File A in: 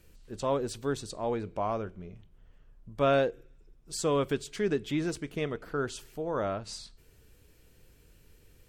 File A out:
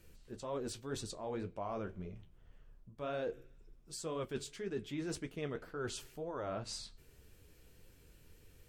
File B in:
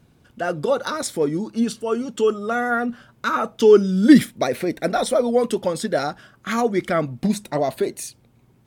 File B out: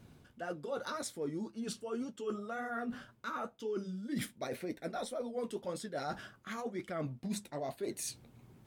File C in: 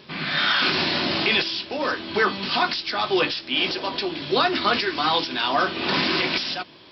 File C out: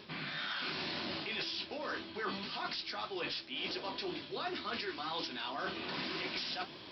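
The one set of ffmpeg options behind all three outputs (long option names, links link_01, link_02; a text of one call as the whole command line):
ffmpeg -i in.wav -af "areverse,acompressor=threshold=-35dB:ratio=8,areverse,flanger=delay=8.9:depth=6.7:regen=-43:speed=1.9:shape=triangular,volume=2dB" out.wav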